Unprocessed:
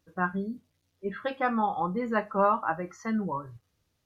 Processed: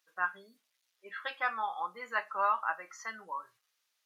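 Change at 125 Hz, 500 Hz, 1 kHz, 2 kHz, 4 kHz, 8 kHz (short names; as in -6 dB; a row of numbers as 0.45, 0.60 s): under -30 dB, -13.5 dB, -4.5 dB, 0.0 dB, +1.5 dB, n/a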